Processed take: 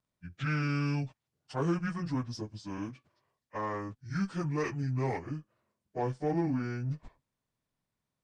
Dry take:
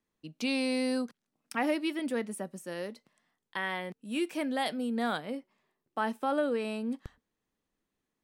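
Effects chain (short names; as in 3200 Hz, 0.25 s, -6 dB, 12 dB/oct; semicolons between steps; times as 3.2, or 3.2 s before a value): pitch shift by moving bins -10 st; added harmonics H 6 -29 dB, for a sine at -20 dBFS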